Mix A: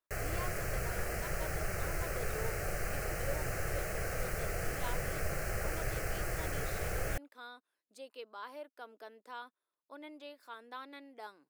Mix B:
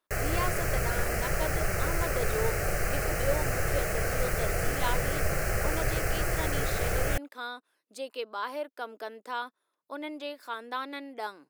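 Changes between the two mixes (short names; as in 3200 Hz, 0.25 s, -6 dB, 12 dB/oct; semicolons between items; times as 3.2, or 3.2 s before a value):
speech +11.5 dB; background +7.5 dB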